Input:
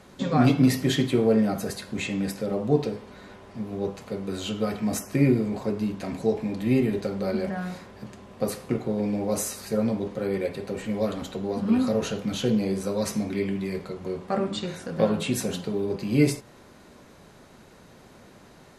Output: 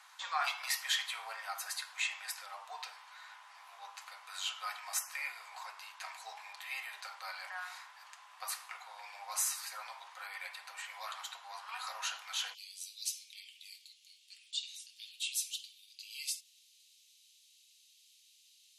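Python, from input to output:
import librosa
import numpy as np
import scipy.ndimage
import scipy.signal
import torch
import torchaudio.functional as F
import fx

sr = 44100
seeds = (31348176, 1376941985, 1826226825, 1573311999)

y = fx.steep_highpass(x, sr, hz=fx.steps((0.0, 850.0), (12.53, 2800.0)), slope=48)
y = y * librosa.db_to_amplitude(-2.0)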